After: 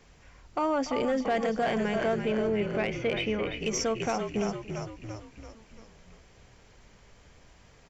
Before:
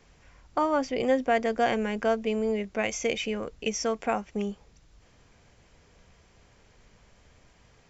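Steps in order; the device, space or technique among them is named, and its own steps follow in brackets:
0:02.18–0:03.52: low-pass filter 3,500 Hz 24 dB per octave
echo with shifted repeats 339 ms, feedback 53%, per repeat −46 Hz, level −8 dB
single-tap delay 290 ms −20.5 dB
soft clipper into limiter (soft clipping −17.5 dBFS, distortion −18 dB; brickwall limiter −22 dBFS, peak gain reduction 4 dB)
level +1.5 dB

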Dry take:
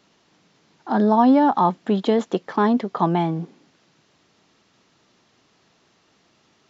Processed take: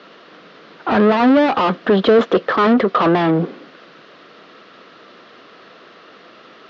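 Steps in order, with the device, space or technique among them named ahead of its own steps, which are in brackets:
overdrive pedal into a guitar cabinet (mid-hump overdrive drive 30 dB, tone 1,600 Hz, clips at −5 dBFS; loudspeaker in its box 99–4,500 Hz, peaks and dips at 130 Hz −5 dB, 500 Hz +5 dB, 870 Hz −10 dB, 1,300 Hz +4 dB, 2,300 Hz −3 dB)

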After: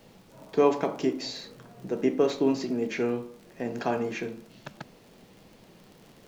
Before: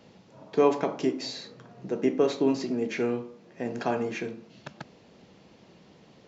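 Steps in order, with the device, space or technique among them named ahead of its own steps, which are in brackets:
vinyl LP (surface crackle 48 per second −42 dBFS; pink noise bed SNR 33 dB)

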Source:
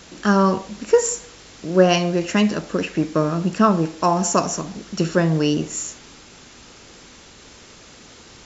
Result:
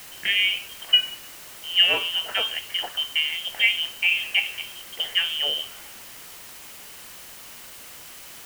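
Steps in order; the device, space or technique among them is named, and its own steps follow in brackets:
scrambled radio voice (band-pass filter 340–3,000 Hz; voice inversion scrambler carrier 3,400 Hz; white noise bed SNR 16 dB)
level −2.5 dB

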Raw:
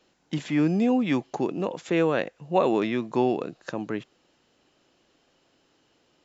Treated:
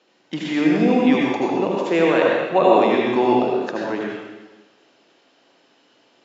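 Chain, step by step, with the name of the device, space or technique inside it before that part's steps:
supermarket ceiling speaker (band-pass filter 260–5,400 Hz; convolution reverb RT60 1.2 s, pre-delay 73 ms, DRR −3 dB)
level +4.5 dB

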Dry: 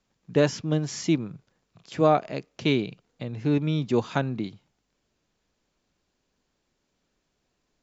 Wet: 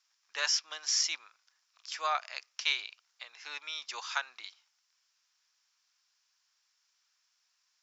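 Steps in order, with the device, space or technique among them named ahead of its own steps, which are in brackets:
headphones lying on a table (high-pass filter 1,100 Hz 24 dB per octave; parametric band 5,400 Hz +11 dB 0.44 octaves)

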